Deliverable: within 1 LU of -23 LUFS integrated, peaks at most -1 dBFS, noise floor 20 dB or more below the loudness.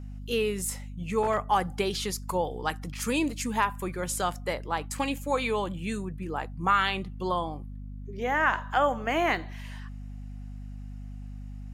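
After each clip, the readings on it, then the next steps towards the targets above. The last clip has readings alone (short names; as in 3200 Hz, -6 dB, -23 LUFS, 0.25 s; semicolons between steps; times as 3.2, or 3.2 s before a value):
hum 50 Hz; harmonics up to 250 Hz; hum level -37 dBFS; loudness -29.0 LUFS; peak -10.5 dBFS; loudness target -23.0 LUFS
-> de-hum 50 Hz, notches 5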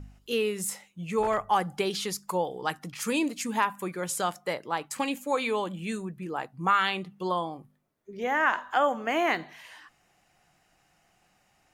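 hum none; loudness -29.0 LUFS; peak -10.5 dBFS; loudness target -23.0 LUFS
-> gain +6 dB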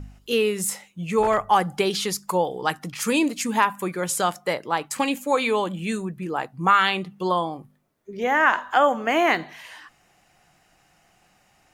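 loudness -23.0 LUFS; peak -4.5 dBFS; noise floor -62 dBFS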